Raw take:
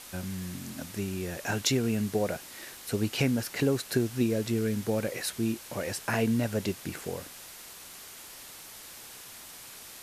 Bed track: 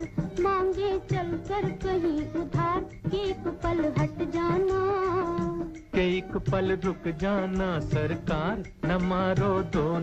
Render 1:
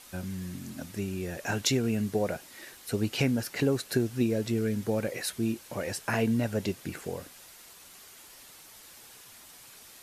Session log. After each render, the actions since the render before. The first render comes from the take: noise reduction 6 dB, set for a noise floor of -47 dBFS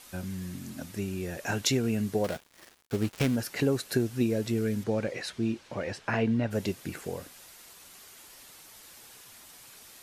2.24–3.36 s: dead-time distortion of 0.18 ms; 4.83–6.50 s: low-pass 6.4 kHz -> 3.3 kHz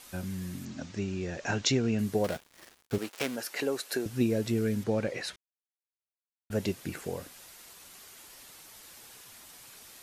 0.65–1.99 s: steep low-pass 7.1 kHz 48 dB/octave; 2.98–4.06 s: high-pass 410 Hz; 5.36–6.50 s: mute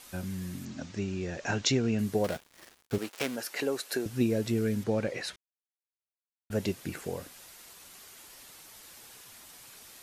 no audible change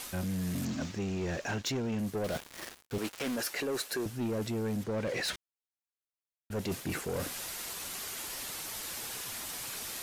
reverse; compression 6:1, threshold -39 dBFS, peak gain reduction 16.5 dB; reverse; waveshaping leveller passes 3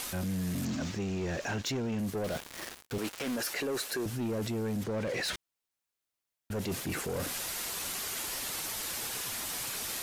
in parallel at -1 dB: compressor with a negative ratio -38 dBFS; on the sum: peak limiter -28.5 dBFS, peak gain reduction 6.5 dB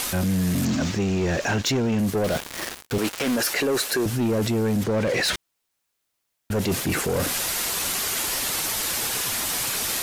trim +10.5 dB

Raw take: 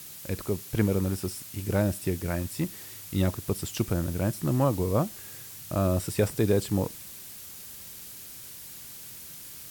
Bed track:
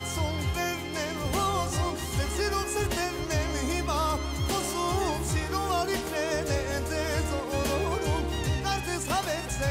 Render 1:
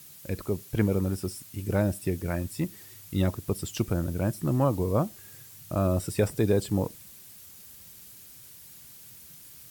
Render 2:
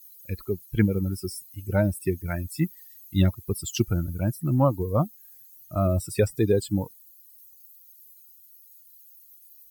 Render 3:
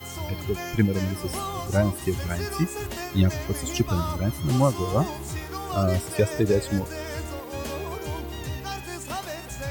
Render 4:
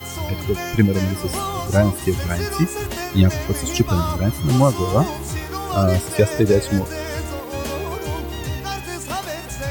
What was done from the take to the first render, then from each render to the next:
noise reduction 7 dB, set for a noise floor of -44 dBFS
expander on every frequency bin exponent 2; in parallel at +2 dB: gain riding within 3 dB 0.5 s
add bed track -4.5 dB
trim +6 dB; peak limiter -3 dBFS, peak gain reduction 1.5 dB

